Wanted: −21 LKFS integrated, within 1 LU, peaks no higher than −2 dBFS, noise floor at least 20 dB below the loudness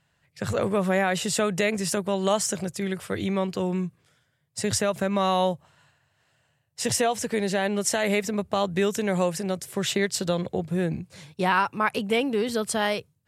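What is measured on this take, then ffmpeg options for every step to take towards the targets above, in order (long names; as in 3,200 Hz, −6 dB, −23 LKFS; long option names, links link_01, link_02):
integrated loudness −26.0 LKFS; sample peak −10.5 dBFS; target loudness −21.0 LKFS
→ -af "volume=5dB"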